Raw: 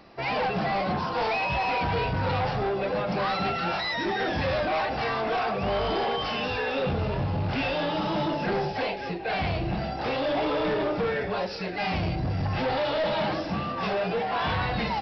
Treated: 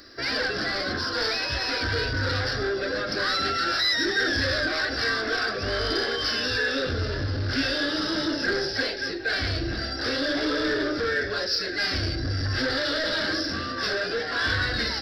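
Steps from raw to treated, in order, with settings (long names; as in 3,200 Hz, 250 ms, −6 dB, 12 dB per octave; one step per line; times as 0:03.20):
drawn EQ curve 110 Hz 0 dB, 170 Hz −18 dB, 270 Hz +3 dB, 570 Hz −4 dB, 860 Hz −17 dB, 1,600 Hz +10 dB, 2,500 Hz −7 dB, 5,000 Hz +15 dB
in parallel at −10.5 dB: soft clipping −27.5 dBFS, distortion −11 dB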